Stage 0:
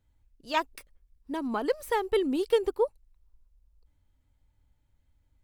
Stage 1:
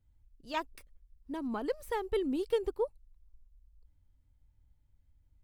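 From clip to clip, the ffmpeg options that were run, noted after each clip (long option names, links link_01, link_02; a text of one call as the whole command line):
ffmpeg -i in.wav -af "lowshelf=frequency=210:gain=10.5,volume=-8dB" out.wav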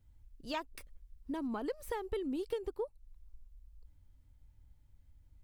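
ffmpeg -i in.wav -af "acompressor=threshold=-41dB:ratio=4,volume=5dB" out.wav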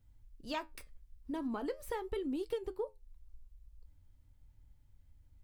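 ffmpeg -i in.wav -af "flanger=delay=6.7:depth=7.4:regen=-70:speed=0.43:shape=triangular,volume=4dB" out.wav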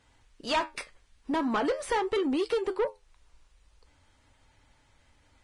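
ffmpeg -i in.wav -filter_complex "[0:a]lowshelf=frequency=240:gain=-9,asplit=2[link_01][link_02];[link_02]highpass=frequency=720:poles=1,volume=21dB,asoftclip=type=tanh:threshold=-26dB[link_03];[link_01][link_03]amix=inputs=2:normalize=0,lowpass=frequency=2700:poles=1,volume=-6dB,volume=7.5dB" -ar 22050 -c:a libvorbis -b:a 32k out.ogg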